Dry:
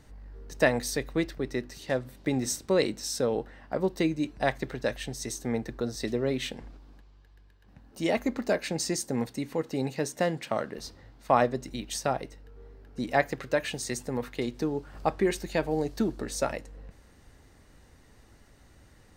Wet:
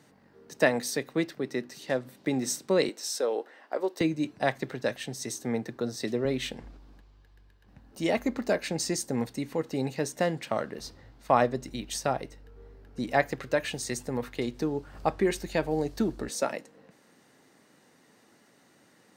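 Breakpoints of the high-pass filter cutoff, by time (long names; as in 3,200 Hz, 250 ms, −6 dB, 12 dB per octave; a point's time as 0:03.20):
high-pass filter 24 dB per octave
140 Hz
from 0:02.89 340 Hz
from 0:04.01 110 Hz
from 0:06.25 44 Hz
from 0:16.29 170 Hz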